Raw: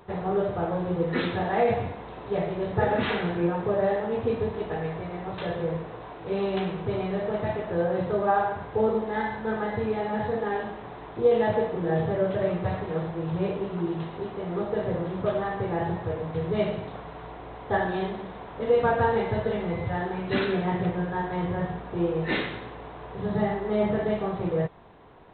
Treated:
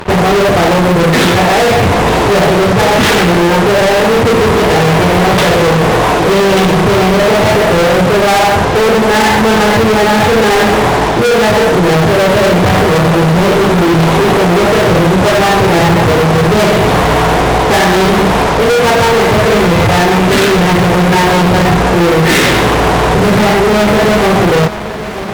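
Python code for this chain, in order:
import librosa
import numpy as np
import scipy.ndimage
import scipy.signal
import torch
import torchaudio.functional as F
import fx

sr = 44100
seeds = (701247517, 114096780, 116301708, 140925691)

y = fx.rider(x, sr, range_db=5, speed_s=0.5)
y = fx.fuzz(y, sr, gain_db=42.0, gate_db=-51.0)
y = fx.echo_feedback(y, sr, ms=927, feedback_pct=56, wet_db=-14.0)
y = y * librosa.db_to_amplitude(5.5)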